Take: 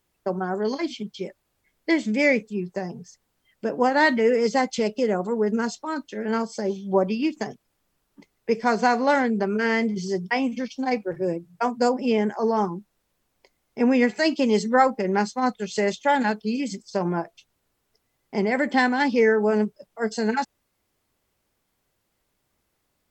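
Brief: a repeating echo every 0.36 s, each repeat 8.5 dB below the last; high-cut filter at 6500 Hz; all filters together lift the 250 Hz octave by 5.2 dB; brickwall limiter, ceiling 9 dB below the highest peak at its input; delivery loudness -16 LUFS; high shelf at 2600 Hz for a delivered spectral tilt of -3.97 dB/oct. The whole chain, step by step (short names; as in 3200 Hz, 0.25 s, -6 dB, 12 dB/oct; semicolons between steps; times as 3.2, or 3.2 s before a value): LPF 6500 Hz; bell 250 Hz +6 dB; high shelf 2600 Hz -5.5 dB; limiter -15 dBFS; feedback echo 0.36 s, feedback 38%, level -8.5 dB; gain +8 dB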